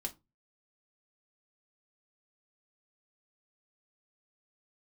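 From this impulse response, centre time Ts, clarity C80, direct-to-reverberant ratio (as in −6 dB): 8 ms, 28.0 dB, 0.5 dB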